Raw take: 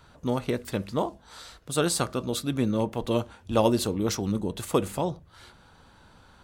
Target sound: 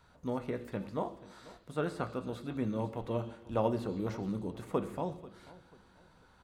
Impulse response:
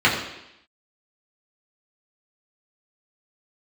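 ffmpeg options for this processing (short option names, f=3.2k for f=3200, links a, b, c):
-filter_complex "[0:a]asplit=2[a][b];[b]adelay=489,lowpass=f=2.8k:p=1,volume=-19dB,asplit=2[c][d];[d]adelay=489,lowpass=f=2.8k:p=1,volume=0.33,asplit=2[e][f];[f]adelay=489,lowpass=f=2.8k:p=1,volume=0.33[g];[a][c][e][g]amix=inputs=4:normalize=0,asplit=2[h][i];[1:a]atrim=start_sample=2205[j];[i][j]afir=irnorm=-1:irlink=0,volume=-28dB[k];[h][k]amix=inputs=2:normalize=0,acrossover=split=2600[l][m];[m]acompressor=threshold=-51dB:ratio=4:attack=1:release=60[n];[l][n]amix=inputs=2:normalize=0,volume=-9dB"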